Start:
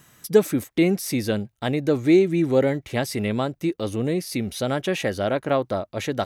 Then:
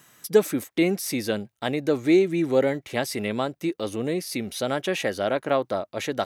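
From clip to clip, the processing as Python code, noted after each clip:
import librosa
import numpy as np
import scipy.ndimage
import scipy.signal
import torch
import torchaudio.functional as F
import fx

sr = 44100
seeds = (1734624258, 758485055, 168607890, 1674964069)

y = fx.highpass(x, sr, hz=280.0, slope=6)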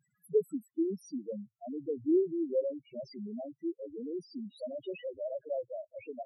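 y = fx.spec_topn(x, sr, count=2)
y = F.gain(torch.from_numpy(y), -7.5).numpy()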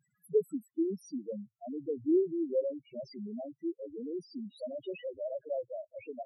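y = x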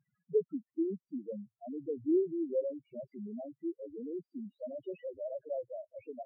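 y = scipy.ndimage.gaussian_filter1d(x, 4.3, mode='constant')
y = F.gain(torch.from_numpy(y), -1.5).numpy()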